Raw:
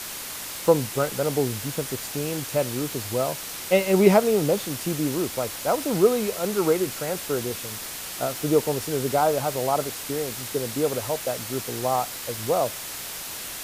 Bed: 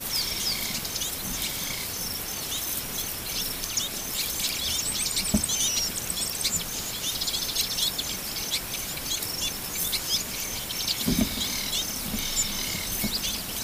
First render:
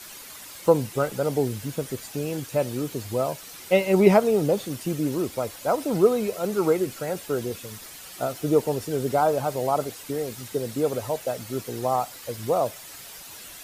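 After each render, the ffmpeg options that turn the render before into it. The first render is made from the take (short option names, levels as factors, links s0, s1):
-af "afftdn=nr=10:nf=-35"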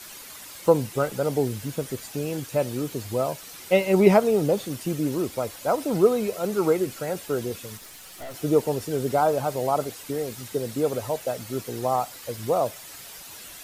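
-filter_complex "[0:a]asettb=1/sr,asplit=3[s0][s1][s2];[s0]atrim=end=7.774[s3];[s1]atrim=start=7.77:end=8.34,asetpts=PTS-STARTPTS,afade=t=in:d=0.004:c=qsin,afade=t=out:st=0.566:d=0.004:c=qsin,aeval=exprs='(tanh(56.2*val(0)+0.5)-tanh(0.5))/56.2':c=same[s4];[s2]atrim=start=8.336[s5];[s3][s4]acrossfade=d=0.004:c1=hsin:c2=qsin[s6];[s6][s5]acrossfade=d=0.004:c1=qsin:c2=hsin"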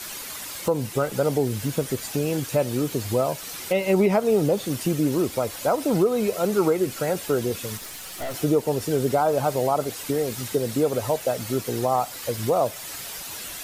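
-filter_complex "[0:a]asplit=2[s0][s1];[s1]acompressor=threshold=0.0316:ratio=6,volume=1.19[s2];[s0][s2]amix=inputs=2:normalize=0,alimiter=limit=0.282:level=0:latency=1:release=149"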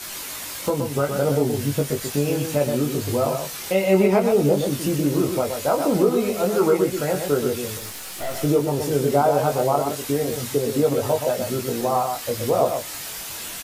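-filter_complex "[0:a]asplit=2[s0][s1];[s1]adelay=21,volume=0.631[s2];[s0][s2]amix=inputs=2:normalize=0,asplit=2[s3][s4];[s4]aecho=0:1:124:0.501[s5];[s3][s5]amix=inputs=2:normalize=0"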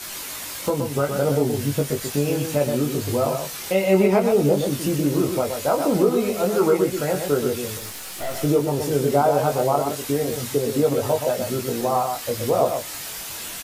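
-af anull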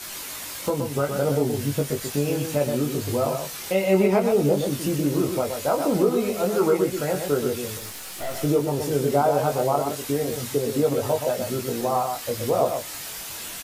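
-af "volume=0.794"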